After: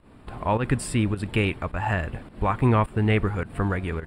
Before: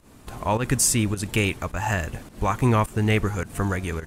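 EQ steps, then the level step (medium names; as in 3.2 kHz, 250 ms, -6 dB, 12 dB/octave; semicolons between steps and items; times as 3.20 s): boxcar filter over 7 samples; 0.0 dB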